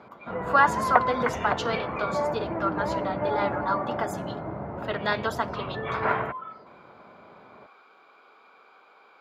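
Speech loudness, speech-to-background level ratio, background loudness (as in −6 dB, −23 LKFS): −29.0 LKFS, 1.0 dB, −30.0 LKFS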